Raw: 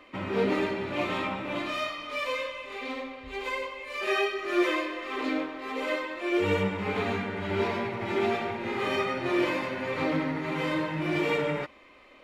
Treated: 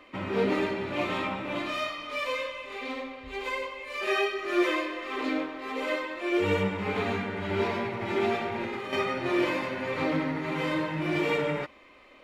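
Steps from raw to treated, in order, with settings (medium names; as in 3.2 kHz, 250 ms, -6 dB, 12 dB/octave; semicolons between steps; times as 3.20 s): 8.49–8.93 s: compressor with a negative ratio -34 dBFS, ratio -1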